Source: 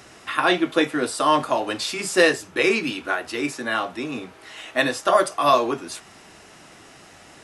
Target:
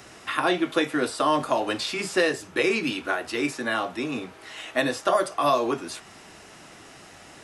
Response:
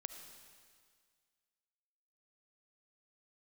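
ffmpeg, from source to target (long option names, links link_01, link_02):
-filter_complex "[0:a]acrossover=split=770|4600[link_01][link_02][link_03];[link_01]acompressor=threshold=-21dB:ratio=4[link_04];[link_02]acompressor=threshold=-25dB:ratio=4[link_05];[link_03]acompressor=threshold=-39dB:ratio=4[link_06];[link_04][link_05][link_06]amix=inputs=3:normalize=0"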